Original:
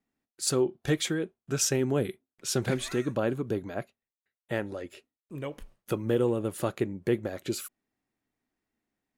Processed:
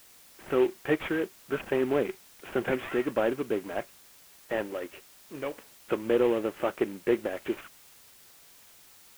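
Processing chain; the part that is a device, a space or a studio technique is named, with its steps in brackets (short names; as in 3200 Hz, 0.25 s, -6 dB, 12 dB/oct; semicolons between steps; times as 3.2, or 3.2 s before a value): army field radio (BPF 310–3400 Hz; CVSD 16 kbps; white noise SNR 24 dB); gain +4 dB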